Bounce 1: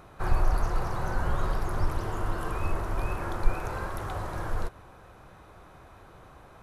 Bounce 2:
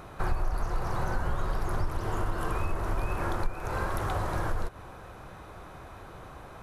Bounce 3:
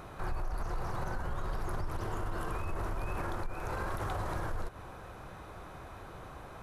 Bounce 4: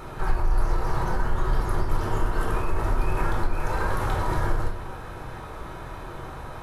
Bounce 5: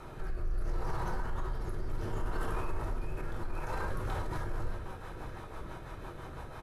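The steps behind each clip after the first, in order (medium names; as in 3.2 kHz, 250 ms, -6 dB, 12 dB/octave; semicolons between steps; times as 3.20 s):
compression 4:1, threshold -31 dBFS, peak gain reduction 15.5 dB; trim +5.5 dB
peak limiter -25.5 dBFS, peak gain reduction 8.5 dB; trim -1.5 dB
reverberation RT60 0.65 s, pre-delay 3 ms, DRR -1 dB; trim +5 dB
peak limiter -19.5 dBFS, peak gain reduction 8.5 dB; rotary cabinet horn 0.7 Hz, later 6 Hz, at 3.59 s; delay 935 ms -15 dB; trim -5 dB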